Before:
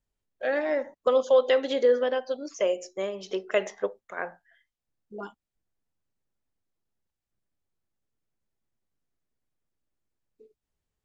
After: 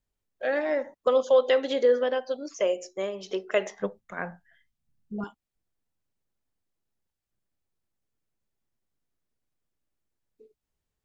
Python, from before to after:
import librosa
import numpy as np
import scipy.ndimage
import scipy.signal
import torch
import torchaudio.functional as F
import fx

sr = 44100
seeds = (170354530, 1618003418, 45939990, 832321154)

y = fx.low_shelf_res(x, sr, hz=270.0, db=11.0, q=1.5, at=(3.79, 5.24))